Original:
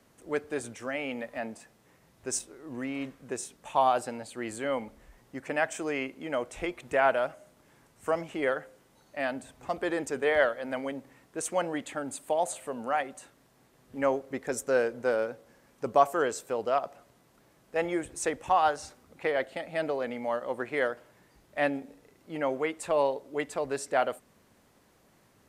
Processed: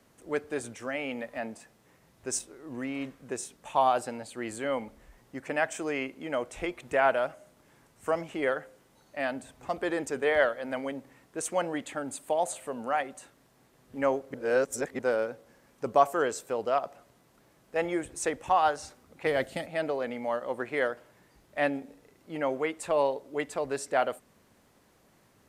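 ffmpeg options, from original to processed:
-filter_complex "[0:a]asplit=3[a][b][c];[a]afade=t=out:st=19.25:d=0.02[d];[b]bass=f=250:g=12,treble=f=4k:g=10,afade=t=in:st=19.25:d=0.02,afade=t=out:st=19.65:d=0.02[e];[c]afade=t=in:st=19.65:d=0.02[f];[d][e][f]amix=inputs=3:normalize=0,asplit=3[g][h][i];[g]atrim=end=14.342[j];[h]atrim=start=14.338:end=14.992,asetpts=PTS-STARTPTS,areverse[k];[i]atrim=start=14.988[l];[j][k]acrossfade=d=0.004:c1=hsin:c2=hsin[m];[m][l]acrossfade=d=0.004:c1=hsin:c2=hsin"

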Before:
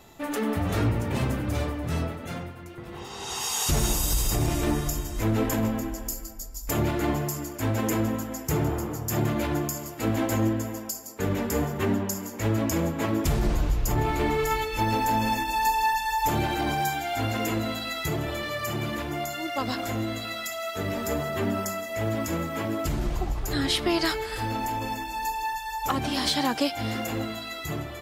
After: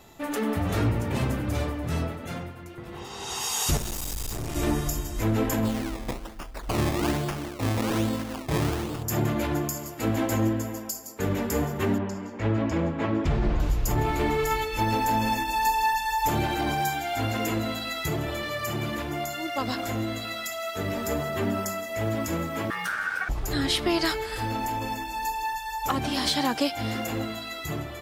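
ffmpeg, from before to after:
-filter_complex "[0:a]asettb=1/sr,asplit=3[a][b][c];[a]atrim=end=3.774[d];[b]atrim=start=3.77:end=4.56,asetpts=PTS-STARTPTS,afade=t=in:d=0.004:c=qsin,afade=t=out:st=0.786:d=0.004:c=qsin,aeval=exprs='(tanh(31.6*val(0)+0.7)-tanh(0.7))/31.6':c=same[e];[c]atrim=start=4.556[f];[d][e]acrossfade=d=0.004:c1=hsin:c2=qsin[g];[g][f]acrossfade=d=0.004:c1=qsin:c2=hsin,asplit=3[h][i][j];[h]afade=t=out:st=5.64:d=0.02[k];[i]acrusher=samples=21:mix=1:aa=0.000001:lfo=1:lforange=21:lforate=1.2,afade=t=in:st=5.64:d=0.02,afade=t=out:st=9.02:d=0.02[l];[j]afade=t=in:st=9.02:d=0.02[m];[k][l][m]amix=inputs=3:normalize=0,asettb=1/sr,asplit=3[n][o][p];[n]atrim=end=11.984[q];[o]atrim=start=11.98:end=13.6,asetpts=PTS-STARTPTS,afade=t=in:d=0.004:c=qsin,afade=t=out:st=1.616:d=0.004:c=qsin,lowpass=3.1k[r];[p]atrim=start=13.596[s];[q][r]acrossfade=d=0.004:c1=hsin:c2=qsin[t];[t][s]acrossfade=d=0.004:c1=qsin:c2=hsin,asettb=1/sr,asplit=3[u][v][w];[u]atrim=end=22.704[x];[v]atrim=start=22.7:end=23.29,asetpts=PTS-STARTPTS,afade=t=in:d=0.004:c=qsin,afade=t=out:st=0.586:d=0.004:c=qsin,aeval=exprs='val(0)*sin(2*PI*1500*n/s)':c=same[y];[w]atrim=start=23.286[z];[x][y]acrossfade=d=0.004:c1=hsin:c2=qsin[aa];[aa][z]acrossfade=d=0.004:c1=qsin:c2=hsin"

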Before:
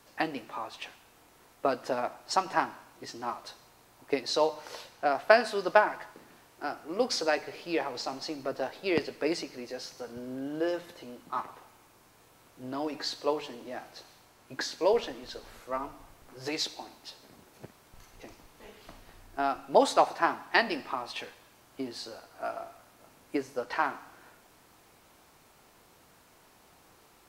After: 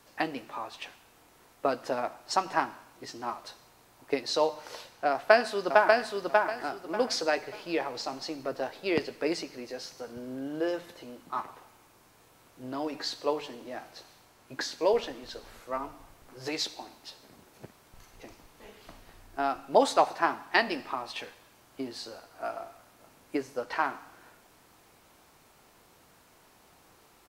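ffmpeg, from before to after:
-filter_complex "[0:a]asplit=2[a][b];[b]afade=t=in:st=5.11:d=0.01,afade=t=out:st=6.11:d=0.01,aecho=0:1:590|1180|1770|2360:0.749894|0.187474|0.0468684|0.0117171[c];[a][c]amix=inputs=2:normalize=0"

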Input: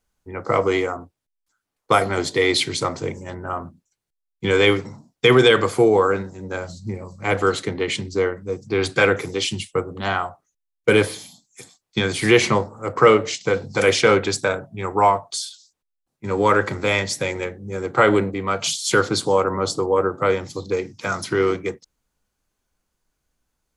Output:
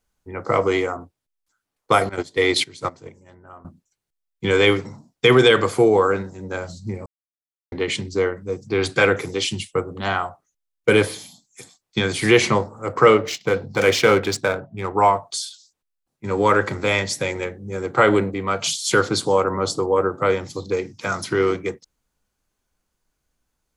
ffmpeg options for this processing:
-filter_complex "[0:a]asettb=1/sr,asplit=3[a][b][c];[a]atrim=end=2.094[d];[b]atrim=start=2.09:end=3.65,asetpts=PTS-STARTPTS,afade=t=in:d=0.004:c=qsin,afade=t=out:st=1.556:d=0.004:c=qsin,agate=range=-16dB:threshold=-22dB:ratio=16:release=100:detection=peak[e];[c]atrim=start=3.646[f];[d][e]acrossfade=d=0.004:c1=hsin:c2=qsin[g];[g][f]acrossfade=d=0.004:c1=qsin:c2=hsin,asettb=1/sr,asplit=3[h][i][j];[h]atrim=end=13.184[k];[i]atrim=start=13.18:end=14.95,asetpts=PTS-STARTPTS,afade=t=in:d=0.004:c=qsin,afade=t=out:st=1.766:d=0.004:c=qsin,adynamicsmooth=sensitivity=5:basefreq=2.8k[l];[j]atrim=start=14.946[m];[k][l]acrossfade=d=0.004:c1=hsin:c2=qsin[n];[n][m]acrossfade=d=0.004:c1=qsin:c2=hsin,asplit=3[o][p][q];[o]atrim=end=7.06,asetpts=PTS-STARTPTS,afade=t=out:st=7.056:d=0.004:c=hsin[r];[p]atrim=start=7.06:end=7.72,asetpts=PTS-STARTPTS,volume=0[s];[q]atrim=start=7.72,asetpts=PTS-STARTPTS,afade=t=in:d=0.004:c=hsin[t];[r][s][t]concat=n=3:v=0:a=1"

